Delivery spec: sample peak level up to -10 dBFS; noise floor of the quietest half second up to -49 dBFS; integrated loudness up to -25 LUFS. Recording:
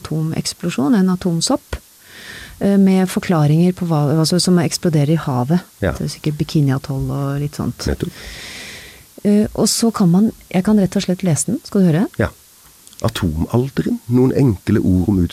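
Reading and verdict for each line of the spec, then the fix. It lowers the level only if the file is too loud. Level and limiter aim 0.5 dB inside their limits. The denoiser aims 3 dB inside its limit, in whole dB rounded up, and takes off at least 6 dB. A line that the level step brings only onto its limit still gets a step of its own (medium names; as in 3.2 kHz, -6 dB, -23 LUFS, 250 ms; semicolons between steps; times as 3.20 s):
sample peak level -4.5 dBFS: fail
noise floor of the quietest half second -46 dBFS: fail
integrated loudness -17.0 LUFS: fail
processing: trim -8.5 dB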